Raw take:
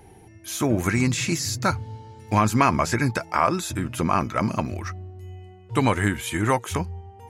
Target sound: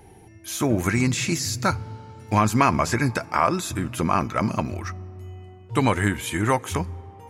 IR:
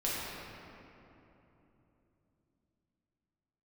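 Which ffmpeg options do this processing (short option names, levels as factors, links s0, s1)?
-filter_complex "[0:a]asplit=2[s0][s1];[1:a]atrim=start_sample=2205,highshelf=f=5300:g=7.5[s2];[s1][s2]afir=irnorm=-1:irlink=0,volume=0.0316[s3];[s0][s3]amix=inputs=2:normalize=0"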